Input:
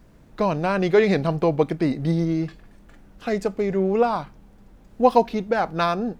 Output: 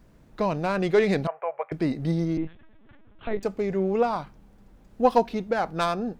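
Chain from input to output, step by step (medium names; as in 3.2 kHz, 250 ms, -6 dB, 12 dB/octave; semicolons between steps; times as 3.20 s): tracing distortion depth 0.054 ms; 1.27–1.72 s: elliptic band-pass 570–2300 Hz, stop band 40 dB; 2.37–3.43 s: LPC vocoder at 8 kHz pitch kept; trim -3.5 dB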